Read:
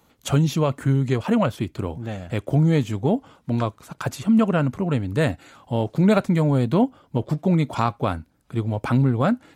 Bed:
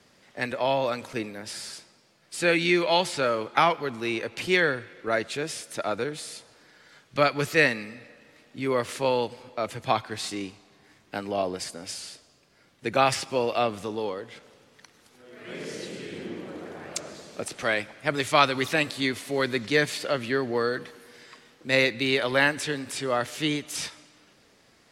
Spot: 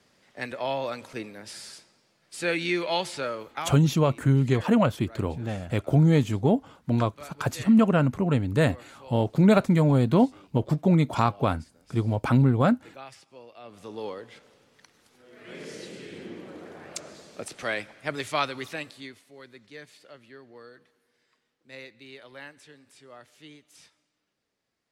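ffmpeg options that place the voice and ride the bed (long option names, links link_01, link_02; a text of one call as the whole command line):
ffmpeg -i stem1.wav -i stem2.wav -filter_complex "[0:a]adelay=3400,volume=-1dB[link_01];[1:a]volume=14dB,afade=type=out:start_time=3.13:duration=0.69:silence=0.125893,afade=type=in:start_time=13.63:duration=0.44:silence=0.11885,afade=type=out:start_time=17.99:duration=1.27:silence=0.125893[link_02];[link_01][link_02]amix=inputs=2:normalize=0" out.wav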